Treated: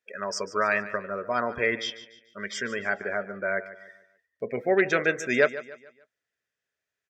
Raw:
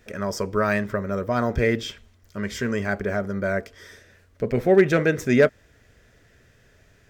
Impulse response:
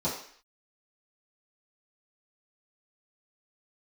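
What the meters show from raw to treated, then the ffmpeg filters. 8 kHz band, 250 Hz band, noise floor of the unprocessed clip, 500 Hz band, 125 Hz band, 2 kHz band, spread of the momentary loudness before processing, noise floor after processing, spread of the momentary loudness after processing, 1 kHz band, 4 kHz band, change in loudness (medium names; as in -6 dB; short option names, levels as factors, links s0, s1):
-0.5 dB, -10.0 dB, -58 dBFS, -5.5 dB, -15.5 dB, +1.0 dB, 12 LU, under -85 dBFS, 15 LU, -1.0 dB, +0.5 dB, -4.0 dB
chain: -filter_complex "[0:a]highpass=f=1100:p=1,afftdn=nr=27:nf=-39,asplit=2[s0][s1];[s1]aecho=0:1:146|292|438|584:0.178|0.0694|0.027|0.0105[s2];[s0][s2]amix=inputs=2:normalize=0,volume=1.33"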